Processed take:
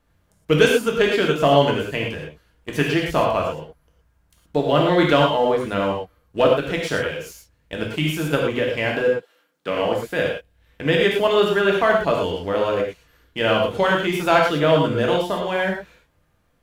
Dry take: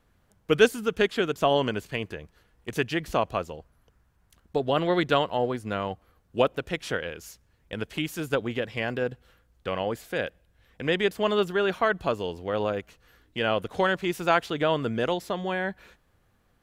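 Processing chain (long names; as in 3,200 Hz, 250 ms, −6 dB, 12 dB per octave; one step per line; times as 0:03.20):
0:09.08–0:09.80: high-pass filter 520 Hz → 120 Hz 24 dB per octave
leveller curve on the samples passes 1
reverb whose tail is shaped and stops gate 140 ms flat, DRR −1.5 dB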